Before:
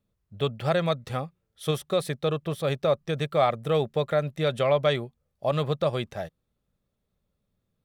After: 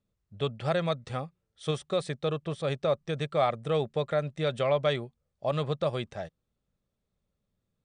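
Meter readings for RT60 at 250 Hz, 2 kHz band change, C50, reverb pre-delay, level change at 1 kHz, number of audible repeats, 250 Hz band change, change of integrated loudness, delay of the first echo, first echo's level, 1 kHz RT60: no reverb audible, −3.5 dB, no reverb audible, no reverb audible, −3.5 dB, no echo audible, −3.5 dB, −3.5 dB, no echo audible, no echo audible, no reverb audible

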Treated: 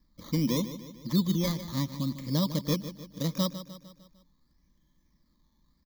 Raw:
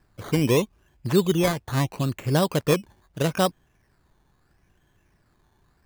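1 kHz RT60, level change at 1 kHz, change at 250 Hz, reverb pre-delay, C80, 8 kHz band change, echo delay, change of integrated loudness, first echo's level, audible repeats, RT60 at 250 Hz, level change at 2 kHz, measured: no reverb audible, −12.5 dB, −3.5 dB, no reverb audible, no reverb audible, −6.5 dB, 151 ms, −6.0 dB, −12.5 dB, 4, no reverb audible, −14.5 dB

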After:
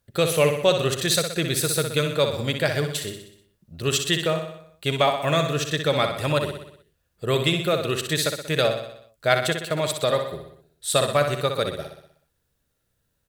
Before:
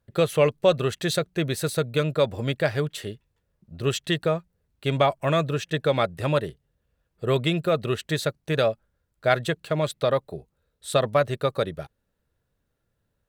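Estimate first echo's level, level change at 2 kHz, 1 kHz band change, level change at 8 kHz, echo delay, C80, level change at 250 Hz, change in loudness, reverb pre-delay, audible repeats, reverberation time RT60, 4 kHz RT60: −7.0 dB, +3.5 dB, +1.5 dB, +10.0 dB, 62 ms, no reverb audible, 0.0 dB, +1.5 dB, no reverb audible, 6, no reverb audible, no reverb audible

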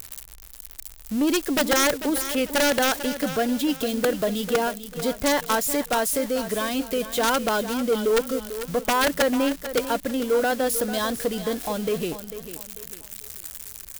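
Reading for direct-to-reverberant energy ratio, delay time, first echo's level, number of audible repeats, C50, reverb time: no reverb audible, 445 ms, −12.0 dB, 3, no reverb audible, no reverb audible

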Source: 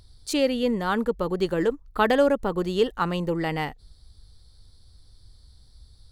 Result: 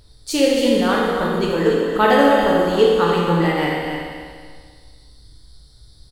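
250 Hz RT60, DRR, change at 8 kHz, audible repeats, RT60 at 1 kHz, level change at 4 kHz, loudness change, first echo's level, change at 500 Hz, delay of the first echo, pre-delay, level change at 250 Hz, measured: 1.8 s, −5.5 dB, can't be measured, 1, 1.8 s, +8.5 dB, +7.5 dB, −7.0 dB, +8.0 dB, 283 ms, 7 ms, +7.5 dB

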